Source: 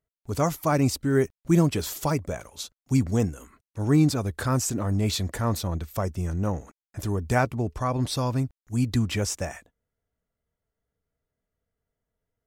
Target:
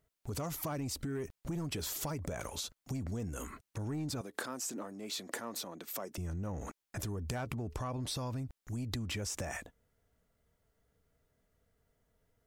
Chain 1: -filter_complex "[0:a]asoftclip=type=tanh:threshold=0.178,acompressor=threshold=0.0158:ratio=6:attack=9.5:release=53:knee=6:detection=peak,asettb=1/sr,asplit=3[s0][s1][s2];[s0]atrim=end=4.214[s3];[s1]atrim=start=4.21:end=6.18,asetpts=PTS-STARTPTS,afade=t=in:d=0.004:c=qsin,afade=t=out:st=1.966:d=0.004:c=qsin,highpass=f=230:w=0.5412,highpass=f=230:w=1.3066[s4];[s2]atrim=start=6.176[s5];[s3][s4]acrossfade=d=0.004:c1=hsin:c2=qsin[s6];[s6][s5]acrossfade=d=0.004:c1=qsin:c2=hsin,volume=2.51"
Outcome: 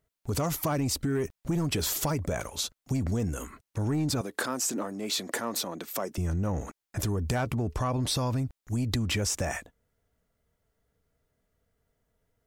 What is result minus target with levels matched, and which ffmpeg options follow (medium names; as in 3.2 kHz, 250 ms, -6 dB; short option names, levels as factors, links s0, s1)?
compression: peak gain reduction -9.5 dB
-filter_complex "[0:a]asoftclip=type=tanh:threshold=0.178,acompressor=threshold=0.00422:ratio=6:attack=9.5:release=53:knee=6:detection=peak,asettb=1/sr,asplit=3[s0][s1][s2];[s0]atrim=end=4.214[s3];[s1]atrim=start=4.21:end=6.18,asetpts=PTS-STARTPTS,afade=t=in:d=0.004:c=qsin,afade=t=out:st=1.966:d=0.004:c=qsin,highpass=f=230:w=0.5412,highpass=f=230:w=1.3066[s4];[s2]atrim=start=6.176[s5];[s3][s4]acrossfade=d=0.004:c1=hsin:c2=qsin[s6];[s6][s5]acrossfade=d=0.004:c1=qsin:c2=hsin,volume=2.51"